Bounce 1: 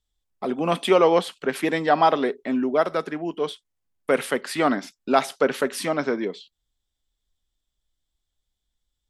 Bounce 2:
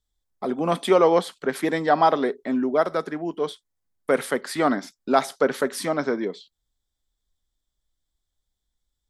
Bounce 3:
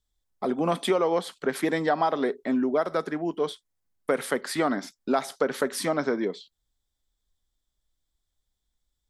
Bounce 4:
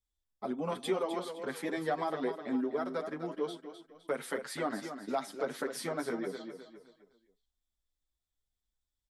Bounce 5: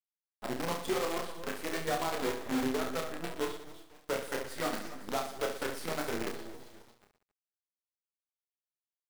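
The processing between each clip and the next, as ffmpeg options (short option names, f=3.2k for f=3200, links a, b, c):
-af "equalizer=f=2.7k:w=3.3:g=-9"
-af "acompressor=threshold=-20dB:ratio=6"
-filter_complex "[0:a]asplit=2[a][b];[b]aecho=0:1:256|512|768|1024:0.355|0.131|0.0486|0.018[c];[a][c]amix=inputs=2:normalize=0,asplit=2[d][e];[e]adelay=7.6,afreqshift=3[f];[d][f]amix=inputs=2:normalize=1,volume=-6.5dB"
-af "acrusher=bits=6:dc=4:mix=0:aa=0.000001,aecho=1:1:30|69|119.7|185.6|271.3:0.631|0.398|0.251|0.158|0.1,volume=-2dB"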